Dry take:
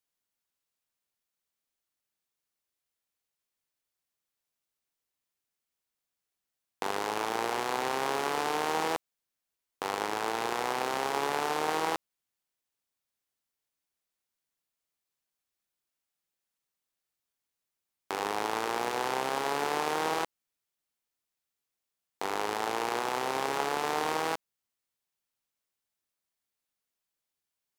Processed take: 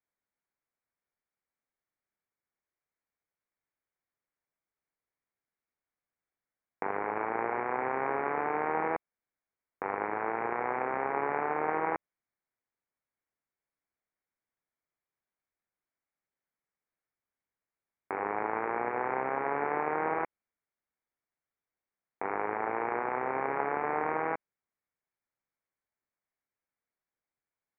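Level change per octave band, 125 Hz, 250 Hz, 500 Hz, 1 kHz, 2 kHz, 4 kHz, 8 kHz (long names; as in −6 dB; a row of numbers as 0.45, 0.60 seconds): −1.0 dB, −0.5 dB, 0.0 dB, −0.5 dB, −1.0 dB, below −30 dB, below −35 dB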